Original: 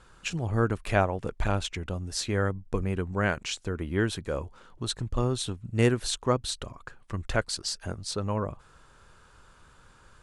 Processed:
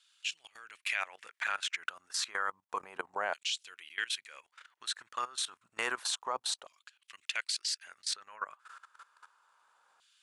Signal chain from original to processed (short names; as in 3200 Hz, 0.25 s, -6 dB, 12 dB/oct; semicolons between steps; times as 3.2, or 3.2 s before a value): LFO high-pass saw down 0.3 Hz 730–3400 Hz; level quantiser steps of 18 dB; gain +3 dB